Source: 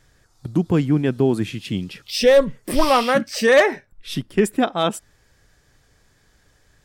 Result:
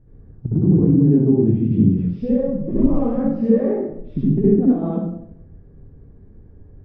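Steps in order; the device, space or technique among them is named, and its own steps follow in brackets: television next door (compressor 6:1, threshold -26 dBFS, peak gain reduction 15.5 dB; LPF 300 Hz 12 dB/oct; reverb RT60 0.75 s, pre-delay 60 ms, DRR -8.5 dB); gain +7.5 dB

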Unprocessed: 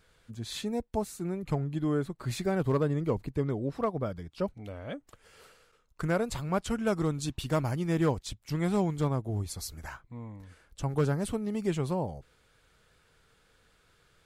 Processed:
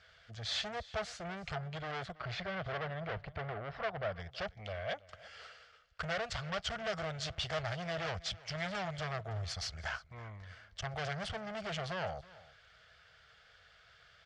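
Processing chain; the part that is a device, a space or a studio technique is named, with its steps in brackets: scooped metal amplifier (tube stage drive 39 dB, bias 0.75; speaker cabinet 88–4400 Hz, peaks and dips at 130 Hz -4 dB, 250 Hz -6 dB, 660 Hz +9 dB, 970 Hz -9 dB, 2500 Hz -7 dB, 3900 Hz -8 dB; passive tone stack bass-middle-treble 10-0-10); 2.12–4.2 Bessel low-pass 2700 Hz, order 2; echo 0.327 s -20 dB; gain +18 dB

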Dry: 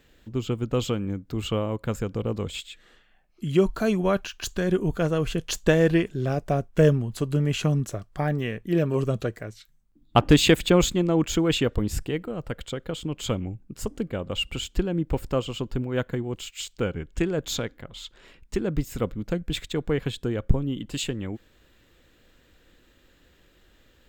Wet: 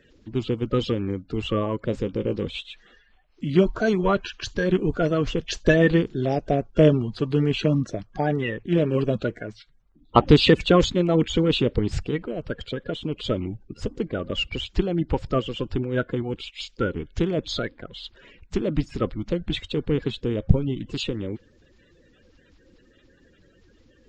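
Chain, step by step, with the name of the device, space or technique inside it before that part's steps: clip after many re-uploads (LPF 5400 Hz 24 dB/oct; bin magnitudes rounded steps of 30 dB); 1.91–2.46 doubler 15 ms -11.5 dB; gain +2.5 dB

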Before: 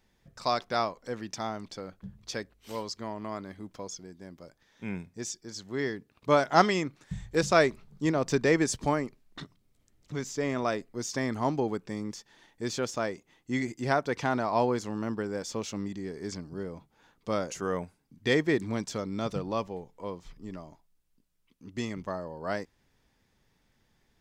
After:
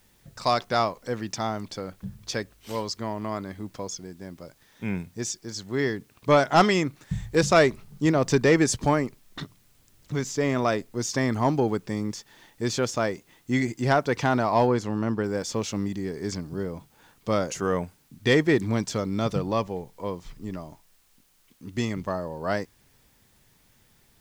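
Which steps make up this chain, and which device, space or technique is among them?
open-reel tape (soft clip -14 dBFS, distortion -18 dB; bell 110 Hz +4 dB 0.89 oct; white noise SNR 38 dB); 14.67–15.24 high shelf 5200 Hz -8 dB; gain +5.5 dB

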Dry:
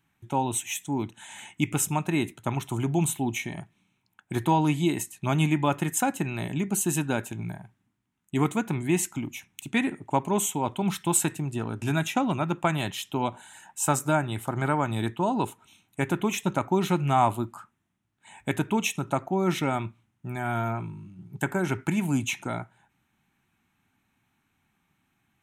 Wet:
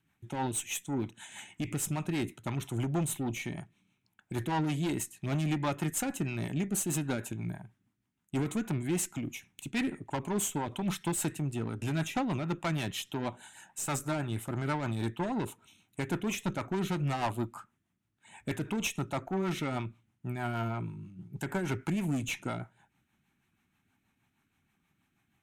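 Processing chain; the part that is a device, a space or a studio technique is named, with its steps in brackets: overdriven rotary cabinet (tube stage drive 25 dB, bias 0.3; rotary speaker horn 6.3 Hz)

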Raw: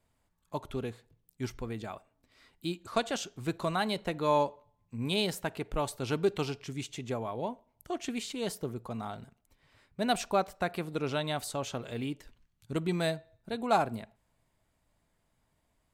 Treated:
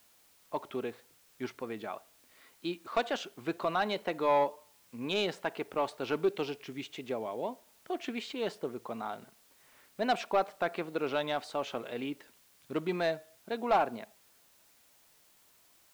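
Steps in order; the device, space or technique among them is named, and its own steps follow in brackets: 6.17–7.98 dynamic EQ 1200 Hz, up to -6 dB, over -51 dBFS, Q 1.1; tape answering machine (BPF 300–3300 Hz; soft clip -21 dBFS, distortion -16 dB; wow and flutter; white noise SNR 29 dB); gain +2.5 dB

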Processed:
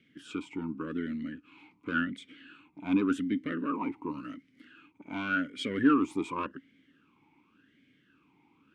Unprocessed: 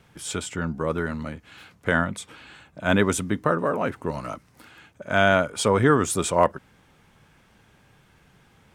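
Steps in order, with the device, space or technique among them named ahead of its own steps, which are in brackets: talk box (tube stage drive 14 dB, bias 0.45; vowel sweep i-u 0.89 Hz); gain +7.5 dB

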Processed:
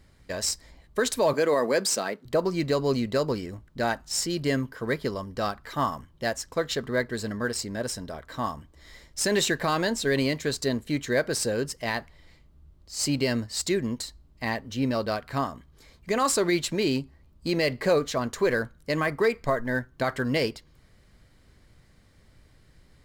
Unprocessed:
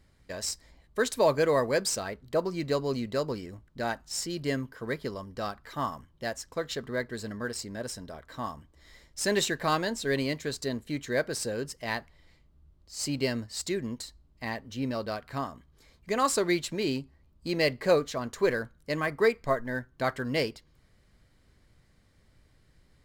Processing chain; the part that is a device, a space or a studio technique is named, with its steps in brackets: 1.33–2.25 HPF 180 Hz 24 dB/oct; clipper into limiter (hard clip -14.5 dBFS, distortion -37 dB; limiter -20 dBFS, peak gain reduction 5.5 dB); gain +5.5 dB

